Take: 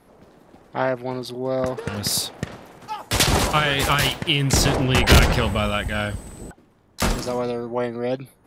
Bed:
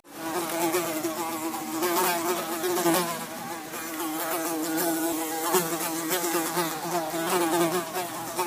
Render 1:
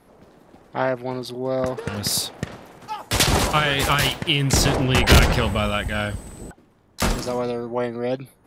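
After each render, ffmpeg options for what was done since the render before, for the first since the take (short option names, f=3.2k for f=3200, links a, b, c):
-af anull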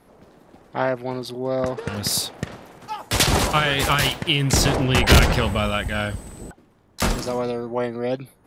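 -filter_complex "[0:a]asettb=1/sr,asplit=3[a][b][c];[a]atrim=end=1.464[d];[b]atrim=start=1.46:end=1.88,asetpts=PTS-STARTPTS,afade=t=in:d=0.004:c=qsin,afade=t=out:st=0.416:d=0.004:c=qsin,lowpass=9.7k[e];[c]atrim=start=1.876[f];[d][e]acrossfade=d=0.004:c1=hsin:c2=qsin[g];[g][f]acrossfade=d=0.004:c1=qsin:c2=hsin"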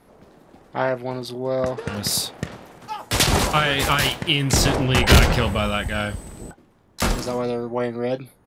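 -filter_complex "[0:a]asplit=2[a][b];[b]adelay=25,volume=-13dB[c];[a][c]amix=inputs=2:normalize=0"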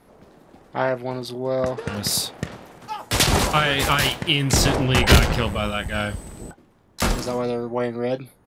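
-filter_complex "[0:a]asplit=3[a][b][c];[a]afade=t=out:st=5.15:d=0.02[d];[b]tremolo=f=110:d=0.571,afade=t=in:st=5.15:d=0.02,afade=t=out:st=5.92:d=0.02[e];[c]afade=t=in:st=5.92:d=0.02[f];[d][e][f]amix=inputs=3:normalize=0"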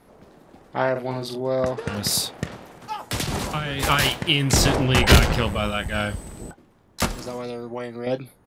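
-filter_complex "[0:a]asettb=1/sr,asplit=3[a][b][c];[a]atrim=end=0.914[d];[b]atrim=start=0.91:end=1.41,asetpts=PTS-STARTPTS,afade=t=in:d=0.004:c=qsin,afade=t=out:st=0.496:d=0.004:c=qsin,asplit=2[e][f];[f]adelay=46,volume=-6dB[g];[e][g]amix=inputs=2:normalize=0,atrim=end_sample=22050[h];[c]atrim=start=1.406[i];[d][h]acrossfade=d=0.004:c1=hsin:c2=qsin[j];[j][i]acrossfade=d=0.004:c1=qsin:c2=hsin,asettb=1/sr,asplit=3[k][l][m];[k]atrim=end=3.014[n];[l]atrim=start=3.01:end=3.83,asetpts=PTS-STARTPTS,afade=t=in:d=0.004:c=qsin,afade=t=out:st=0.816:d=0.004:c=qsin,acrossover=split=110|290[o][p][q];[o]acompressor=threshold=-34dB:ratio=4[r];[p]acompressor=threshold=-29dB:ratio=4[s];[q]acompressor=threshold=-28dB:ratio=4[t];[r][s][t]amix=inputs=3:normalize=0[u];[m]atrim=start=3.826[v];[n][u]acrossfade=d=0.004:c1=hsin:c2=qsin[w];[w][v]acrossfade=d=0.004:c1=qsin:c2=hsin,asettb=1/sr,asplit=3[x][y][z];[x]atrim=end=7.054[aa];[y]atrim=start=7.05:end=8.07,asetpts=PTS-STARTPTS,afade=t=in:d=0.004:c=qsin,afade=t=out:st=1.016:d=0.004:c=qsin,acrossover=split=1900|7300[ab][ac][ad];[ab]acompressor=threshold=-29dB:ratio=4[ae];[ac]acompressor=threshold=-41dB:ratio=4[af];[ad]acompressor=threshold=-46dB:ratio=4[ag];[ae][af][ag]amix=inputs=3:normalize=0[ah];[z]atrim=start=8.066[ai];[aa][ah]acrossfade=d=0.004:c1=hsin:c2=qsin[aj];[aj][ai]acrossfade=d=0.004:c1=qsin:c2=hsin"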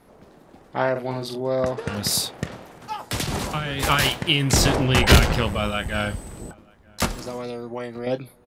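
-filter_complex "[0:a]asplit=2[a][b];[b]adelay=932.9,volume=-27dB,highshelf=f=4k:g=-21[c];[a][c]amix=inputs=2:normalize=0"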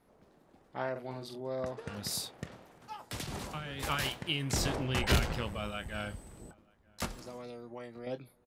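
-af "volume=-13.5dB"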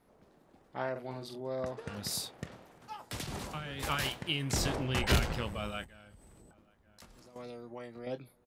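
-filter_complex "[0:a]asettb=1/sr,asplit=3[a][b][c];[a]atrim=end=5.844[d];[b]atrim=start=5.84:end=7.36,asetpts=PTS-STARTPTS,afade=t=in:d=0.004:c=qsin,afade=t=out:st=1.516:d=0.004:c=qsin,acompressor=threshold=-54dB:ratio=5:attack=3.2:release=140:knee=1:detection=peak[e];[c]atrim=start=7.356[f];[d][e]acrossfade=d=0.004:c1=hsin:c2=qsin[g];[g][f]acrossfade=d=0.004:c1=qsin:c2=hsin"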